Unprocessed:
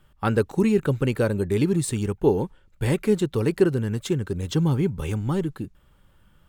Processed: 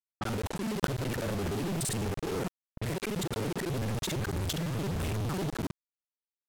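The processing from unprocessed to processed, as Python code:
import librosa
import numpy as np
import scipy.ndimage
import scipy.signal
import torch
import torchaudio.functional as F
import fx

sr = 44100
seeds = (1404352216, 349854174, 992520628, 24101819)

y = fx.local_reverse(x, sr, ms=42.0)
y = fx.over_compress(y, sr, threshold_db=-28.0, ratio=-1.0)
y = fx.quant_companded(y, sr, bits=2)
y = fx.env_lowpass(y, sr, base_hz=430.0, full_db=-25.0)
y = y * librosa.db_to_amplitude(-6.0)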